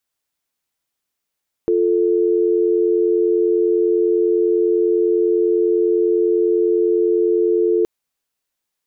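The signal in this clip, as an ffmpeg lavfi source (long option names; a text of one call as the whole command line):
ffmpeg -f lavfi -i "aevalsrc='0.158*(sin(2*PI*350*t)+sin(2*PI*440*t))':duration=6.17:sample_rate=44100" out.wav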